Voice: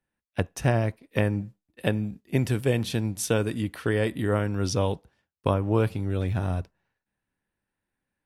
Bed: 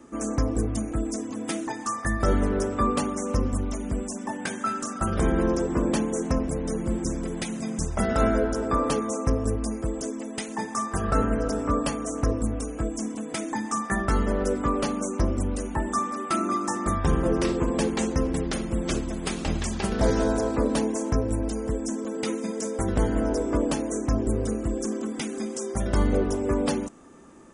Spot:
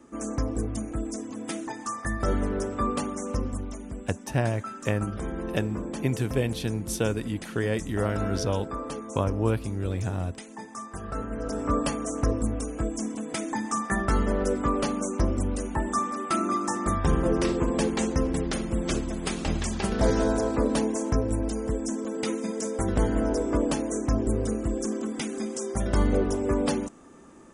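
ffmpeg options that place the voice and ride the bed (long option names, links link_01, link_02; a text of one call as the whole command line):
ffmpeg -i stem1.wav -i stem2.wav -filter_complex "[0:a]adelay=3700,volume=-2.5dB[link_01];[1:a]volume=6dB,afade=type=out:start_time=3.27:duration=0.77:silence=0.473151,afade=type=in:start_time=11.29:duration=0.45:silence=0.334965[link_02];[link_01][link_02]amix=inputs=2:normalize=0" out.wav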